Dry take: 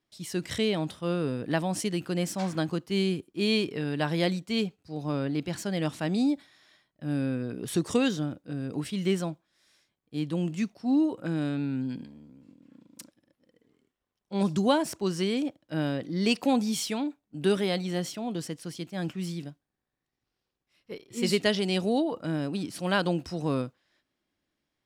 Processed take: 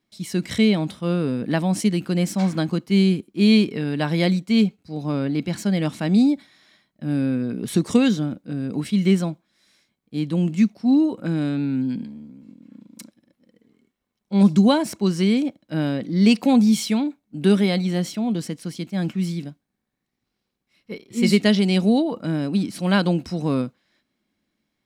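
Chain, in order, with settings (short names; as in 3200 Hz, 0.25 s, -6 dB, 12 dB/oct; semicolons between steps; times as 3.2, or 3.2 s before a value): small resonant body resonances 210/2200/4000 Hz, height 10 dB, ringing for 45 ms; gain +3.5 dB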